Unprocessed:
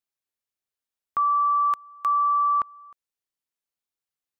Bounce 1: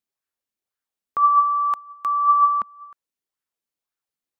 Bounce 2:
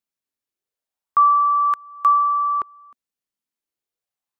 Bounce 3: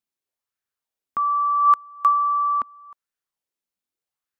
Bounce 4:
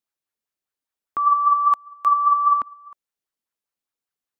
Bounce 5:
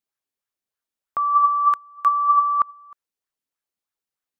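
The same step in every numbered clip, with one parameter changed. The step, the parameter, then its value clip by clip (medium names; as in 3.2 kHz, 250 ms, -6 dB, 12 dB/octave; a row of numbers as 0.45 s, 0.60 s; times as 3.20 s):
sweeping bell, rate: 1.9 Hz, 0.31 Hz, 0.8 Hz, 5 Hz, 3.2 Hz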